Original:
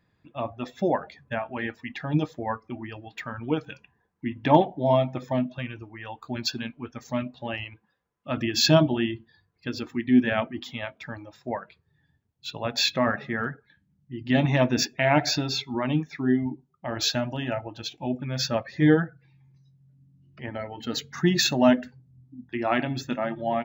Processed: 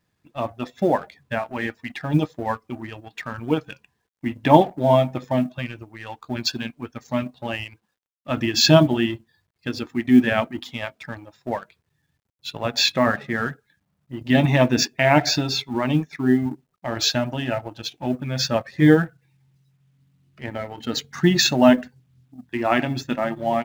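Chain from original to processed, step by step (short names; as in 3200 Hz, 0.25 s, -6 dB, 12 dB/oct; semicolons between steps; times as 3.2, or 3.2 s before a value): G.711 law mismatch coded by A; gain +5 dB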